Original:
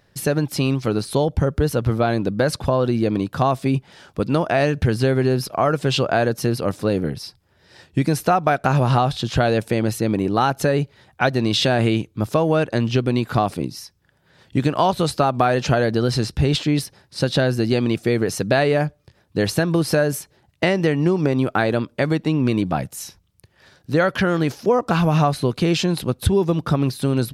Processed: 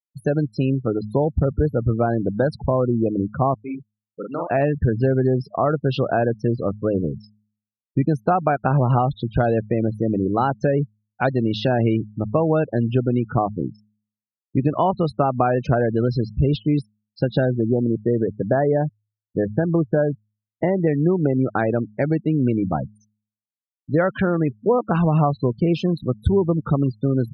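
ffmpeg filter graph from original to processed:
ffmpeg -i in.wav -filter_complex "[0:a]asettb=1/sr,asplit=3[link_01][link_02][link_03];[link_01]atrim=end=3.544[link_04];[link_02]atrim=start=3.54:end=4.51,asetpts=PTS-STARTPTS,afade=type=in:duration=0.004:curve=qsin,afade=type=out:start_time=0.966:duration=0.004:curve=qsin,highpass=frequency=1000:poles=1,asplit=2[link_05][link_06];[link_06]adelay=41,volume=-2.5dB[link_07];[link_05][link_07]amix=inputs=2:normalize=0,atrim=end_sample=42777[link_08];[link_03]atrim=start=4.506[link_09];[link_04][link_08]acrossfade=duration=0.004:curve1=hsin:curve2=qsin[link_10];[link_10][link_09]acrossfade=duration=0.004:curve1=qsin:curve2=hsin,asettb=1/sr,asplit=3[link_11][link_12][link_13];[link_11]atrim=end=17.464[link_14];[link_12]atrim=start=17.46:end=20.87,asetpts=PTS-STARTPTS,afade=type=in:duration=0.004:curve=qsin,afade=type=out:start_time=3.406:duration=0.004:curve=qsin,lowpass=1600,equalizer=frequency=79:width=4.1:gain=-7,acrusher=bits=5:mix=0:aa=0.5[link_15];[link_13]atrim=start=20.866[link_16];[link_14][link_15]acrossfade=duration=0.004:curve1=hsin:curve2=qsin[link_17];[link_17][link_16]acrossfade=duration=0.004:curve1=qsin:curve2=hsin,afftfilt=real='re*gte(hypot(re,im),0.0891)':imag='im*gte(hypot(re,im),0.0891)':win_size=1024:overlap=0.75,lowpass=frequency=1200:poles=1,bandreject=frequency=105.6:width_type=h:width=4,bandreject=frequency=211.2:width_type=h:width=4" out.wav

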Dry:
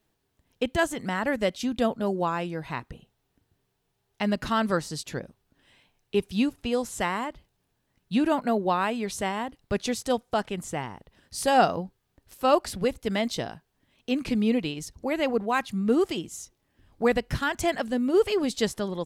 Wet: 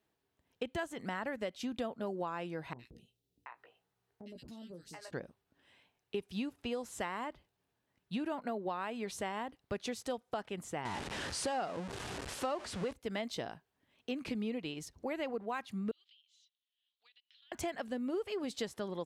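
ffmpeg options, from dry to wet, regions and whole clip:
ffmpeg -i in.wav -filter_complex "[0:a]asettb=1/sr,asplit=3[link_01][link_02][link_03];[link_01]atrim=end=2.734[link_04];[link_02]atrim=start=2.73:end=5.13,asetpts=PTS-STARTPTS,afade=type=in:duration=0.004:curve=qsin,afade=type=out:start_time=2.396:duration=0.004:curve=qsin,asplit=2[link_05][link_06];[link_06]adelay=17,volume=-6dB[link_07];[link_05][link_07]amix=inputs=2:normalize=0,atrim=end_sample=105840,acrossover=split=530|3000[link_08][link_09][link_10];[link_10]adelay=60[link_11];[link_09]adelay=730[link_12];[link_08][link_12][link_11]amix=inputs=3:normalize=0,atrim=end_sample=105840,acompressor=threshold=-41dB:ratio=4:attack=3.2:release=140:knee=1:detection=peak[link_13];[link_03]atrim=start=5.126[link_14];[link_04][link_13]acrossfade=duration=0.004:curve1=hsin:curve2=qsin[link_15];[link_15][link_14]acrossfade=duration=0.004:curve1=qsin:curve2=hsin,asettb=1/sr,asplit=3[link_16][link_17][link_18];[link_16]atrim=end=10.854[link_19];[link_17]atrim=start=10.85:end=12.93,asetpts=PTS-STARTPTS,afade=type=in:duration=0.004:curve=qsin,afade=type=out:start_time=2.076:duration=0.004:curve=qsin,aeval=exprs='val(0)+0.5*0.0447*sgn(val(0))':channel_layout=same,lowpass=frequency=9500:width=0.5412,lowpass=frequency=9500:width=1.3066[link_20];[link_18]atrim=start=12.926[link_21];[link_19][link_20]acrossfade=duration=0.004:curve1=hsin:curve2=qsin[link_22];[link_22][link_21]acrossfade=duration=0.004:curve1=qsin:curve2=hsin,asettb=1/sr,asplit=3[link_23][link_24][link_25];[link_23]atrim=end=15.914[link_26];[link_24]atrim=start=15.91:end=17.52,asetpts=PTS-STARTPTS,afade=type=in:duration=0.004:curve=qsin,afade=type=out:start_time=1.606:duration=0.004:curve=qsin,asuperpass=centerf=3500:order=4:qfactor=2.8,acompressor=threshold=-55dB:ratio=10:attack=3.2:release=140:knee=1:detection=peak[link_27];[link_25]atrim=start=17.516[link_28];[link_26][link_27]acrossfade=duration=0.004:curve1=hsin:curve2=qsin[link_29];[link_29][link_28]acrossfade=duration=0.004:curve1=qsin:curve2=hsin,highpass=53,bass=frequency=250:gain=-5,treble=frequency=4000:gain=-5,acompressor=threshold=-29dB:ratio=6,volume=-5dB" out.wav

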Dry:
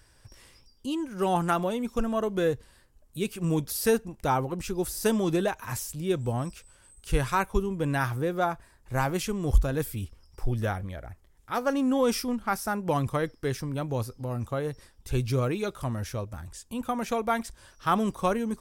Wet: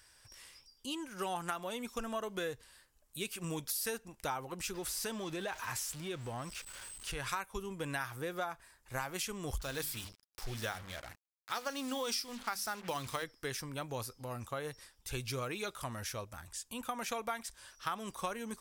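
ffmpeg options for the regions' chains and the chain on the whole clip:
ffmpeg -i in.wav -filter_complex "[0:a]asettb=1/sr,asplit=3[link_01][link_02][link_03];[link_01]atrim=end=4.744[link_04];[link_02]atrim=start=4.74:end=7.29,asetpts=PTS-STARTPTS,afade=type=in:duration=0.004:curve=qsin,afade=type=out:start_time=2.546:duration=0.004:curve=qsin,aeval=exprs='val(0)+0.5*0.01*sgn(val(0))':channel_layout=same,highshelf=frequency=8100:gain=-10,acompressor=threshold=-28dB:ratio=2.5:attack=3.2:release=140:knee=1:detection=peak[link_05];[link_03]atrim=start=7.286[link_06];[link_04][link_05]acrossfade=duration=0.004:curve1=hsin:curve2=qsin[link_07];[link_07][link_06]acrossfade=duration=0.004:curve1=qsin:curve2=hsin,asettb=1/sr,asplit=3[link_08][link_09][link_10];[link_08]atrim=end=9.604[link_11];[link_09]atrim=start=9.6:end=13.24,asetpts=PTS-STARTPTS,afade=type=in:duration=0.004:curve=qsin,afade=type=out:start_time=3.636:duration=0.004:curve=qsin,equalizer=frequency=4500:width_type=o:width=1:gain=9,bandreject=frequency=50:width_type=h:width=6,bandreject=frequency=100:width_type=h:width=6,bandreject=frequency=150:width_type=h:width=6,bandreject=frequency=200:width_type=h:width=6,bandreject=frequency=250:width_type=h:width=6,bandreject=frequency=300:width_type=h:width=6,bandreject=frequency=350:width_type=h:width=6,acrusher=bits=6:mix=0:aa=0.5[link_12];[link_10]atrim=start=13.236[link_13];[link_11][link_12]acrossfade=duration=0.004:curve1=hsin:curve2=qsin[link_14];[link_14][link_13]acrossfade=duration=0.004:curve1=qsin:curve2=hsin,tiltshelf=frequency=690:gain=-7.5,acompressor=threshold=-28dB:ratio=6,volume=-6dB" out.wav

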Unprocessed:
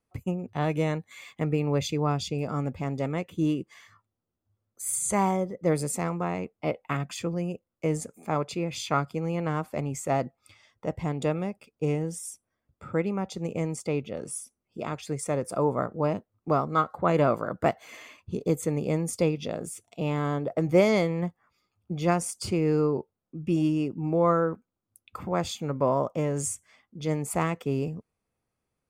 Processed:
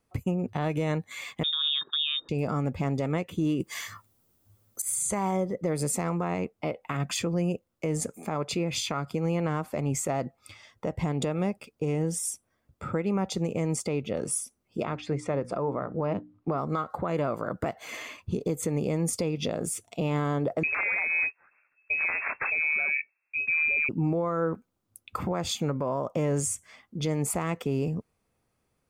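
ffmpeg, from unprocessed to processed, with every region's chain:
ffmpeg -i in.wav -filter_complex "[0:a]asettb=1/sr,asplit=3[link_01][link_02][link_03];[link_01]atrim=end=1.434[link_04];[link_02]atrim=start=1.43:end=2.29,asetpts=PTS-STARTPTS,afade=type=in:duration=0.004:curve=qsin,afade=type=out:start_time=0.856:duration=0.004:curve=qsin,agate=range=-20dB:threshold=-30dB:ratio=16:release=100:detection=peak,lowpass=frequency=3200:width_type=q:width=0.5098,lowpass=frequency=3200:width_type=q:width=0.6013,lowpass=frequency=3200:width_type=q:width=0.9,lowpass=frequency=3200:width_type=q:width=2.563,afreqshift=-3800[link_05];[link_03]atrim=start=2.286[link_06];[link_04][link_05]acrossfade=duration=0.004:curve1=hsin:curve2=qsin[link_07];[link_07][link_06]acrossfade=duration=0.004:curve1=qsin:curve2=hsin,asettb=1/sr,asplit=3[link_08][link_09][link_10];[link_08]atrim=end=3.604[link_11];[link_09]atrim=start=3.6:end=4.82,asetpts=PTS-STARTPTS,afade=type=in:duration=0.004:curve=qsin,afade=type=out:start_time=1.216:duration=0.004:curve=qsin,aemphasis=mode=production:type=50kf,acontrast=50[link_12];[link_10]atrim=start=4.816[link_13];[link_11][link_12]acrossfade=duration=0.004:curve1=hsin:curve2=qsin[link_14];[link_14][link_13]acrossfade=duration=0.004:curve1=qsin:curve2=hsin,asettb=1/sr,asplit=3[link_15][link_16][link_17];[link_15]atrim=end=14.844[link_18];[link_16]atrim=start=14.84:end=16.58,asetpts=PTS-STARTPTS,afade=type=in:duration=0.004:curve=qsin,afade=type=out:start_time=1.736:duration=0.004:curve=qsin,lowpass=3300,bandreject=frequency=60:width_type=h:width=6,bandreject=frequency=120:width_type=h:width=6,bandreject=frequency=180:width_type=h:width=6,bandreject=frequency=240:width_type=h:width=6,bandreject=frequency=300:width_type=h:width=6[link_19];[link_17]atrim=start=16.576[link_20];[link_18][link_19]acrossfade=duration=0.004:curve1=hsin:curve2=qsin[link_21];[link_21][link_20]acrossfade=duration=0.004:curve1=qsin:curve2=hsin,asettb=1/sr,asplit=3[link_22][link_23][link_24];[link_22]atrim=end=20.634[link_25];[link_23]atrim=start=20.63:end=23.89,asetpts=PTS-STARTPTS,afade=type=in:duration=0.004:curve=qsin,afade=type=out:start_time=3.256:duration=0.004:curve=qsin,acrusher=samples=14:mix=1:aa=0.000001:lfo=1:lforange=8.4:lforate=3.3,aeval=exprs='(mod(4.47*val(0)+1,2)-1)/4.47':channel_layout=same,lowpass=frequency=2300:width_type=q:width=0.5098,lowpass=frequency=2300:width_type=q:width=0.6013,lowpass=frequency=2300:width_type=q:width=0.9,lowpass=frequency=2300:width_type=q:width=2.563,afreqshift=-2700[link_26];[link_24]atrim=start=23.886[link_27];[link_25][link_26]acrossfade=duration=0.004:curve1=hsin:curve2=qsin[link_28];[link_28][link_27]acrossfade=duration=0.004:curve1=qsin:curve2=hsin,acompressor=threshold=-26dB:ratio=6,alimiter=level_in=2dB:limit=-24dB:level=0:latency=1:release=177,volume=-2dB,volume=7dB" out.wav

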